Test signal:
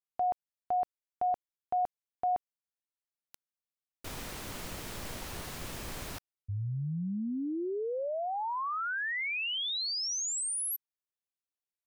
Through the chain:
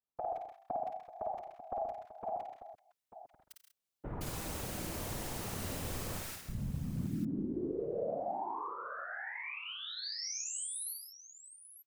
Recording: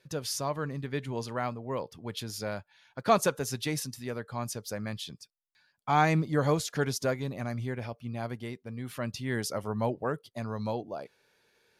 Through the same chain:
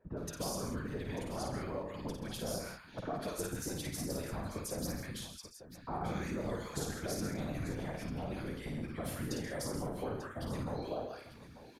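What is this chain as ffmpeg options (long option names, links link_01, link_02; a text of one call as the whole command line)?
ffmpeg -i in.wav -filter_complex "[0:a]acompressor=threshold=-40dB:ratio=2:release=49,acrossover=split=1300[link_01][link_02];[link_02]adelay=170[link_03];[link_01][link_03]amix=inputs=2:normalize=0,acrossover=split=750|1600|6000[link_04][link_05][link_06][link_07];[link_04]acompressor=threshold=-41dB:ratio=4[link_08];[link_05]acompressor=threshold=-54dB:ratio=4[link_09];[link_06]acompressor=threshold=-57dB:ratio=4[link_10];[link_07]acompressor=threshold=-47dB:ratio=4[link_11];[link_08][link_09][link_10][link_11]amix=inputs=4:normalize=0,afftfilt=real='hypot(re,im)*cos(2*PI*random(0))':imag='hypot(re,im)*sin(2*PI*random(1))':win_size=512:overlap=0.75,asplit=2[link_12][link_13];[link_13]aecho=0:1:53|90|131|162|193|892:0.631|0.2|0.316|0.251|0.168|0.224[link_14];[link_12][link_14]amix=inputs=2:normalize=0,volume=8.5dB" out.wav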